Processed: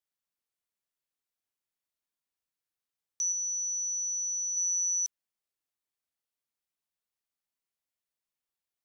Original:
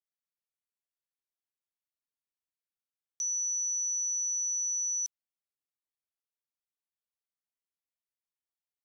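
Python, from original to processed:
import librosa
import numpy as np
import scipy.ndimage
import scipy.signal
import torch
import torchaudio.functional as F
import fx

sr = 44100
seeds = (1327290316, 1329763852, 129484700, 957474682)

y = fx.lowpass(x, sr, hz=5700.0, slope=12, at=(3.32, 4.57))
y = F.gain(torch.from_numpy(y), 2.5).numpy()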